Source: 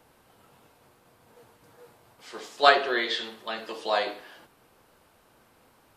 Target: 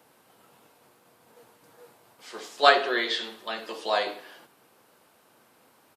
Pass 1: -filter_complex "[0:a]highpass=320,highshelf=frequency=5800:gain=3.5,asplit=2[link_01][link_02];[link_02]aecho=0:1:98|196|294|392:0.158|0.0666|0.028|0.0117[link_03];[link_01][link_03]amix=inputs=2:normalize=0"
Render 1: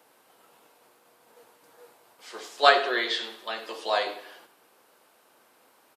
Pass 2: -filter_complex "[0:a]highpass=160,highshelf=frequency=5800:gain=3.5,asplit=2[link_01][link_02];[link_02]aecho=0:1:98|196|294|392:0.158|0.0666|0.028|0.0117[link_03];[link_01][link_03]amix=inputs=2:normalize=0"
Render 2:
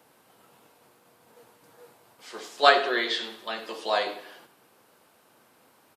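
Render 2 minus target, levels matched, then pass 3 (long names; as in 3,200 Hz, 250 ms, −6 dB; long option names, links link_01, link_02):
echo-to-direct +7 dB
-filter_complex "[0:a]highpass=160,highshelf=frequency=5800:gain=3.5,asplit=2[link_01][link_02];[link_02]aecho=0:1:98|196|294:0.0708|0.0297|0.0125[link_03];[link_01][link_03]amix=inputs=2:normalize=0"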